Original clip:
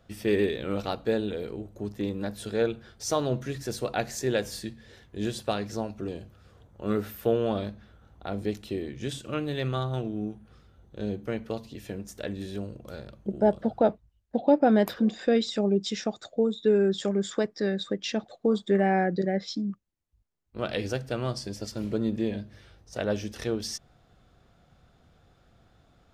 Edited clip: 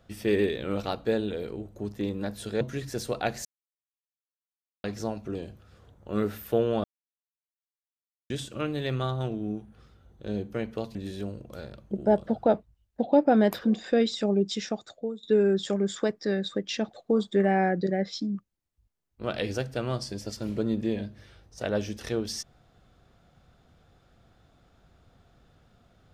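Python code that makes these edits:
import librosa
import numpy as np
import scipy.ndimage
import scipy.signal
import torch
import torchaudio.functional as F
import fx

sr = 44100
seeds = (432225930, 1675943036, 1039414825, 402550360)

y = fx.edit(x, sr, fx.cut(start_s=2.61, length_s=0.73),
    fx.silence(start_s=4.18, length_s=1.39),
    fx.silence(start_s=7.57, length_s=1.46),
    fx.cut(start_s=11.68, length_s=0.62),
    fx.fade_out_to(start_s=15.76, length_s=0.82, curve='qsin', floor_db=-16.5), tone=tone)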